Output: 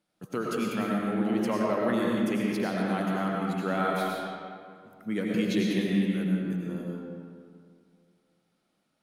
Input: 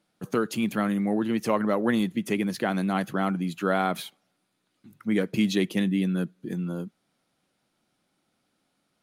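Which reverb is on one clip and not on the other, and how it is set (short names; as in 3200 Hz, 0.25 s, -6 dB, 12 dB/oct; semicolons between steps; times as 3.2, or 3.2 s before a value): digital reverb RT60 2.2 s, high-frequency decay 0.6×, pre-delay 60 ms, DRR -3 dB; gain -6.5 dB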